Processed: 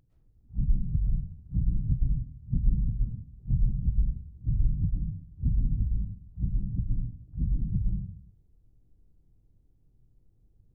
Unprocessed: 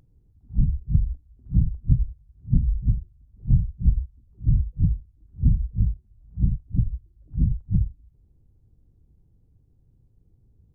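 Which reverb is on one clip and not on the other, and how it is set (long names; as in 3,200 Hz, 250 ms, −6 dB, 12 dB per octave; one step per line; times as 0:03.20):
comb and all-pass reverb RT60 0.66 s, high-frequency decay 0.65×, pre-delay 85 ms, DRR −2.5 dB
level −8.5 dB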